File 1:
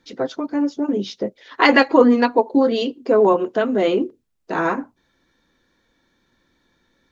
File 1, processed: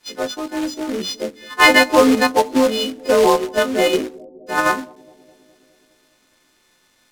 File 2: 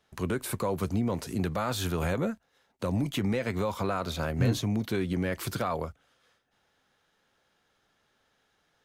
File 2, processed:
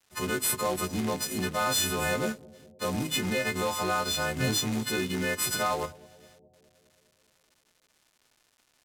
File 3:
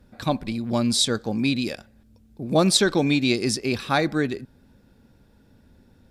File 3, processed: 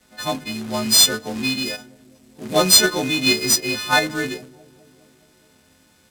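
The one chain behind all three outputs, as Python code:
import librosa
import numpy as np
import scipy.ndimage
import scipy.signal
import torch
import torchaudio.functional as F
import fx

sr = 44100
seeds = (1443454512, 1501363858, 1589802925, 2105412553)

p1 = fx.freq_snap(x, sr, grid_st=3)
p2 = fx.highpass(p1, sr, hz=170.0, slope=6)
p3 = fx.hum_notches(p2, sr, base_hz=50, count=9)
p4 = fx.level_steps(p3, sr, step_db=18)
p5 = p3 + F.gain(torch.from_numpy(p4), -3.0).numpy()
p6 = fx.quant_companded(p5, sr, bits=4)
p7 = p6 + fx.echo_bbd(p6, sr, ms=207, stages=1024, feedback_pct=67, wet_db=-20.5, dry=0)
p8 = np.interp(np.arange(len(p7)), np.arange(len(p7))[::2], p7[::2])
y = F.gain(torch.from_numpy(p8), -1.5).numpy()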